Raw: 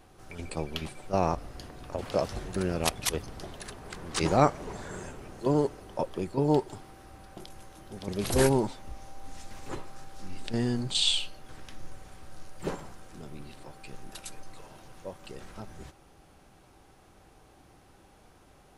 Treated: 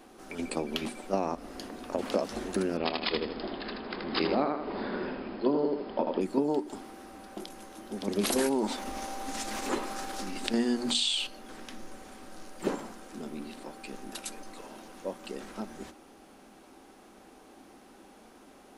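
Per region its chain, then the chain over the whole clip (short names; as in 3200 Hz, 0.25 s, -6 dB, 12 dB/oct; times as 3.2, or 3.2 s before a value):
2.77–6.21 brick-wall FIR low-pass 5200 Hz + doubler 27 ms -13.5 dB + feedback echo 79 ms, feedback 29%, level -4 dB
8.23–11.27 expander -40 dBFS + low shelf 450 Hz -6 dB + fast leveller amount 50%
whole clip: compressor 6:1, threshold -29 dBFS; resonant low shelf 170 Hz -10.5 dB, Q 3; notches 60/120/180/240/300 Hz; gain +3.5 dB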